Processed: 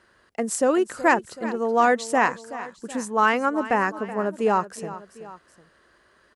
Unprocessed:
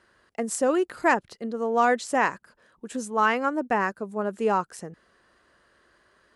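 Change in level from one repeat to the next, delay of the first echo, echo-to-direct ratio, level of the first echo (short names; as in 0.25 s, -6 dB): -5.0 dB, 0.376 s, -14.0 dB, -15.0 dB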